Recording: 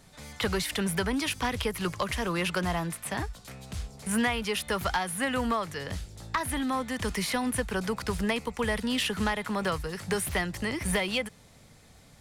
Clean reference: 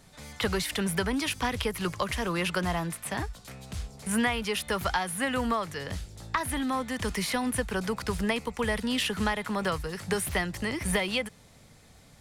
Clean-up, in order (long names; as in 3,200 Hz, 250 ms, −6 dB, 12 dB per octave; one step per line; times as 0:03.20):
clipped peaks rebuilt −20 dBFS